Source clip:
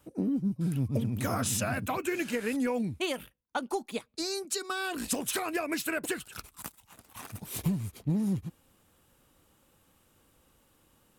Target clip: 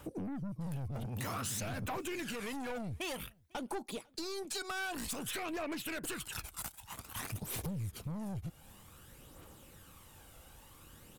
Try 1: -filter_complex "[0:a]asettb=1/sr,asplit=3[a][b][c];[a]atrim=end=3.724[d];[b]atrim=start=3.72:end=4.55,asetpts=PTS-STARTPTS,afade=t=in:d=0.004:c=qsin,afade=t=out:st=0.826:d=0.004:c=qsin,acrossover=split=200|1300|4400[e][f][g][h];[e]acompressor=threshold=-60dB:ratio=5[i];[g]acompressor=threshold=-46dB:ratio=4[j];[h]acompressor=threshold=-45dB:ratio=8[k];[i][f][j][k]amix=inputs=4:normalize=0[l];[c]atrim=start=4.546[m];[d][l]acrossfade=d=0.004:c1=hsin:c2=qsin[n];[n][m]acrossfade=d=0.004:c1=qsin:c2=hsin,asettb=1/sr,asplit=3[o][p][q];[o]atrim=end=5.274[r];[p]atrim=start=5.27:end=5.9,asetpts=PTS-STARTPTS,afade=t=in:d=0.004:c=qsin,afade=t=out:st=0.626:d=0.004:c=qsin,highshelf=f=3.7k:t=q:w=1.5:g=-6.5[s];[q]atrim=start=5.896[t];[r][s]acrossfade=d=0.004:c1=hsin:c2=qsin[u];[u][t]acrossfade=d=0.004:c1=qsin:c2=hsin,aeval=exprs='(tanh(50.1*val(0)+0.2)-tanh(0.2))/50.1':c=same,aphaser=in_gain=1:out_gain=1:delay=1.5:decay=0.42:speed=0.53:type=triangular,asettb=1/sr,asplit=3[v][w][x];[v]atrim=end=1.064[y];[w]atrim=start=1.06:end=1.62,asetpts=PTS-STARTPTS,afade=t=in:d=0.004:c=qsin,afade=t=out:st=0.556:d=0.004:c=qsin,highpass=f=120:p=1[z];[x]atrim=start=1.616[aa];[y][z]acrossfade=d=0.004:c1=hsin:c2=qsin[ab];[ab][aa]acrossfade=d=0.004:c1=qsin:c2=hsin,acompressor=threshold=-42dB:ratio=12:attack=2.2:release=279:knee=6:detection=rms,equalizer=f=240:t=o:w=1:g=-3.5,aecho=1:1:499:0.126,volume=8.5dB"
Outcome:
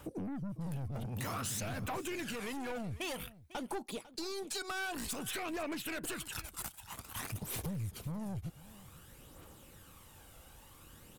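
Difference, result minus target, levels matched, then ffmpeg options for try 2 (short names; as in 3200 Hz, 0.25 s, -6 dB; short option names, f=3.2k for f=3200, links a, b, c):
echo-to-direct +10.5 dB
-filter_complex "[0:a]asettb=1/sr,asplit=3[a][b][c];[a]atrim=end=3.724[d];[b]atrim=start=3.72:end=4.55,asetpts=PTS-STARTPTS,afade=t=in:d=0.004:c=qsin,afade=t=out:st=0.826:d=0.004:c=qsin,acrossover=split=200|1300|4400[e][f][g][h];[e]acompressor=threshold=-60dB:ratio=5[i];[g]acompressor=threshold=-46dB:ratio=4[j];[h]acompressor=threshold=-45dB:ratio=8[k];[i][f][j][k]amix=inputs=4:normalize=0[l];[c]atrim=start=4.546[m];[d][l]acrossfade=d=0.004:c1=hsin:c2=qsin[n];[n][m]acrossfade=d=0.004:c1=qsin:c2=hsin,asettb=1/sr,asplit=3[o][p][q];[o]atrim=end=5.274[r];[p]atrim=start=5.27:end=5.9,asetpts=PTS-STARTPTS,afade=t=in:d=0.004:c=qsin,afade=t=out:st=0.626:d=0.004:c=qsin,highshelf=f=3.7k:t=q:w=1.5:g=-6.5[s];[q]atrim=start=5.896[t];[r][s]acrossfade=d=0.004:c1=hsin:c2=qsin[u];[u][t]acrossfade=d=0.004:c1=qsin:c2=hsin,aeval=exprs='(tanh(50.1*val(0)+0.2)-tanh(0.2))/50.1':c=same,aphaser=in_gain=1:out_gain=1:delay=1.5:decay=0.42:speed=0.53:type=triangular,asettb=1/sr,asplit=3[v][w][x];[v]atrim=end=1.064[y];[w]atrim=start=1.06:end=1.62,asetpts=PTS-STARTPTS,afade=t=in:d=0.004:c=qsin,afade=t=out:st=0.556:d=0.004:c=qsin,highpass=f=120:p=1[z];[x]atrim=start=1.616[aa];[y][z]acrossfade=d=0.004:c1=hsin:c2=qsin[ab];[ab][aa]acrossfade=d=0.004:c1=qsin:c2=hsin,acompressor=threshold=-42dB:ratio=12:attack=2.2:release=279:knee=6:detection=rms,equalizer=f=240:t=o:w=1:g=-3.5,aecho=1:1:499:0.0376,volume=8.5dB"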